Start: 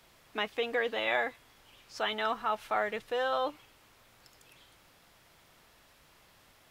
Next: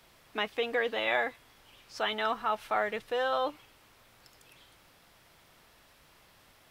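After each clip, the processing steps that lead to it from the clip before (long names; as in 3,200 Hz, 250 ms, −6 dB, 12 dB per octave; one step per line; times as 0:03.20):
parametric band 6,900 Hz −2.5 dB 0.22 octaves
level +1 dB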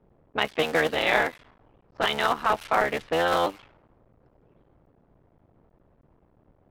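sub-harmonics by changed cycles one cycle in 3, muted
low-pass that shuts in the quiet parts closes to 420 Hz, open at −30.5 dBFS
level +8 dB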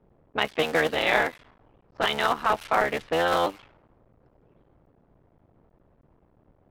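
no processing that can be heard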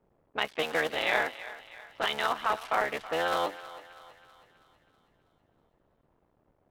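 low-shelf EQ 340 Hz −7.5 dB
feedback echo with a high-pass in the loop 323 ms, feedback 53%, high-pass 510 Hz, level −15 dB
level −4 dB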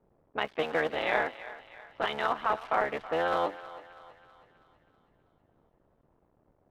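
low-pass filter 1,400 Hz 6 dB per octave
level +2 dB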